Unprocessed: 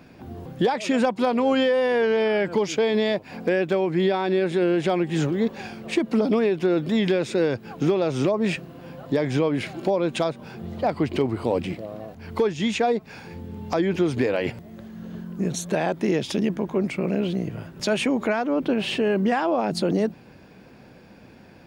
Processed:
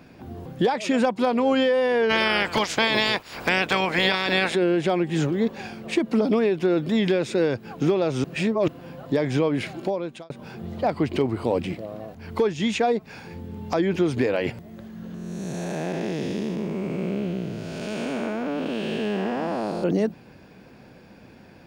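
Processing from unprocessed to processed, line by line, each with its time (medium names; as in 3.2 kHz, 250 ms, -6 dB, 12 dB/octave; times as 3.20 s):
2.09–4.54 s: spectral peaks clipped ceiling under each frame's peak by 25 dB
8.24–8.68 s: reverse
9.71–10.30 s: fade out
15.14–19.84 s: spectral blur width 439 ms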